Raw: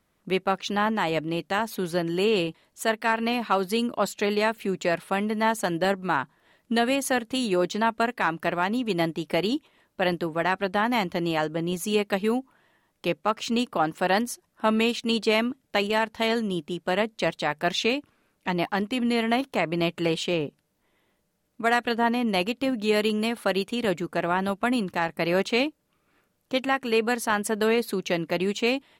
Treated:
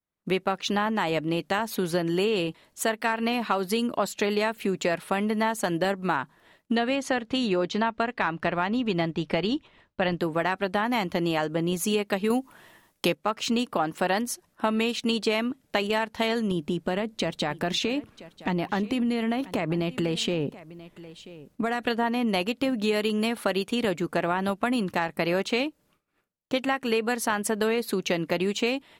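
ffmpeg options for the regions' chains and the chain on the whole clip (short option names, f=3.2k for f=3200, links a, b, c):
-filter_complex "[0:a]asettb=1/sr,asplit=3[a][b][c];[a]atrim=end=6.754[d];[b]atrim=start=6.75:end=10.2,asetpts=PTS-STARTPTS,afade=t=in:d=0.004:c=qsin,afade=t=out:st=3.446:d=0.004:c=qsin,lowpass=4.9k,asubboost=boost=3:cutoff=160[e];[c]atrim=start=10.196[f];[d][e]acrossfade=d=0.004:c1=hsin:c2=qsin[g];[g][f]acrossfade=d=0.004:c1=qsin:c2=hsin,asettb=1/sr,asplit=3[h][i][j];[h]atrim=end=12.304[k];[i]atrim=start=12.3:end=13.15,asetpts=PTS-STARTPTS,afade=t=in:d=0.004:c=qsin,afade=t=out:st=0.846:d=0.004:c=qsin,highshelf=f=5k:g=8.5,acontrast=36[l];[j]atrim=start=13.146[m];[k][l]acrossfade=d=0.004:c1=hsin:c2=qsin[n];[n][m]acrossfade=d=0.004:c1=qsin:c2=hsin,asettb=1/sr,asplit=3[o][p][q];[o]atrim=end=16.514[r];[p]atrim=start=16.51:end=21.84,asetpts=PTS-STARTPTS,afade=t=in:d=0.004:c=qsin,afade=t=out:st=5.326:d=0.004:c=qsin,lowshelf=f=370:g=7.5,acompressor=threshold=-26dB:ratio=4:attack=3.2:release=140:knee=1:detection=peak,aecho=1:1:985:0.106,atrim=end_sample=235053[s];[q]atrim=start=21.836[t];[r][s]acrossfade=d=0.004:c1=hsin:c2=qsin[u];[u][t]acrossfade=d=0.004:c1=qsin:c2=hsin,agate=range=-33dB:threshold=-56dB:ratio=3:detection=peak,acompressor=threshold=-27dB:ratio=4,volume=4.5dB"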